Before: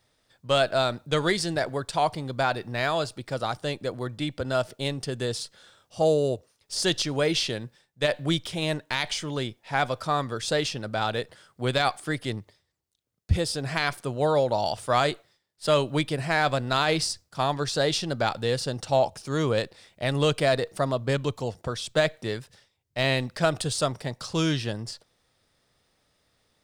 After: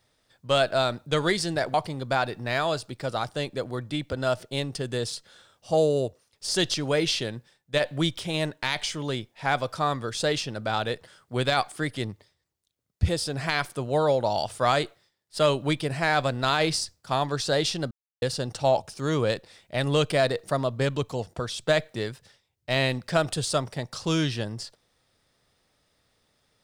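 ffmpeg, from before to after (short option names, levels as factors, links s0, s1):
-filter_complex "[0:a]asplit=4[s0][s1][s2][s3];[s0]atrim=end=1.742[s4];[s1]atrim=start=2.018:end=18.19,asetpts=PTS-STARTPTS,afade=t=out:st=16.168:d=0.004:c=hsin[s5];[s2]atrim=start=18.19:end=18.5,asetpts=PTS-STARTPTS,volume=0[s6];[s3]atrim=start=18.5,asetpts=PTS-STARTPTS,afade=t=in:d=0.004:c=hsin[s7];[s5][s6][s7]concat=n=3:v=0:a=1[s8];[s4][s8]acrossfade=d=0.004:c1=hsin:c2=hsin"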